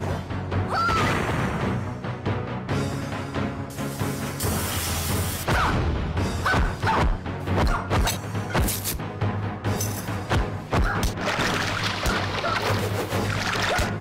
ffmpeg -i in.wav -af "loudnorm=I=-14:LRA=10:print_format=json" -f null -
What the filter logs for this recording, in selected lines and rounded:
"input_i" : "-25.2",
"input_tp" : "-11.6",
"input_lra" : "2.8",
"input_thresh" : "-35.2",